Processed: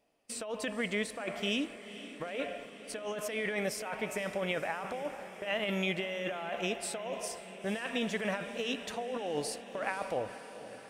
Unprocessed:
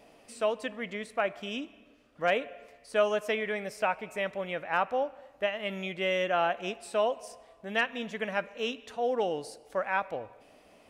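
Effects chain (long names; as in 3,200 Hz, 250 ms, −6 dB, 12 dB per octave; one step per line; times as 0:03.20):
high-shelf EQ 5,600 Hz +5 dB
noise gate −49 dBFS, range −23 dB
compressor whose output falls as the input rises −35 dBFS, ratio −1
on a send: feedback delay with all-pass diffusion 494 ms, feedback 71%, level −14 dB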